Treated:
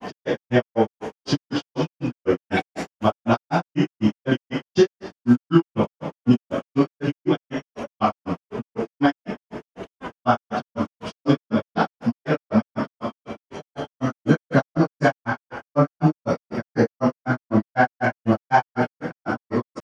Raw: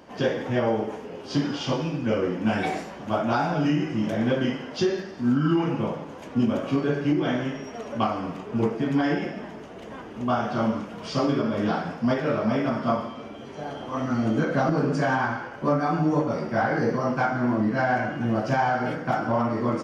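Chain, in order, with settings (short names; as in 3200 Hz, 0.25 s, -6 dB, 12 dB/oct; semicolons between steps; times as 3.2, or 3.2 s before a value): grains 0.126 s, grains 4/s, pitch spread up and down by 0 st; gain +9 dB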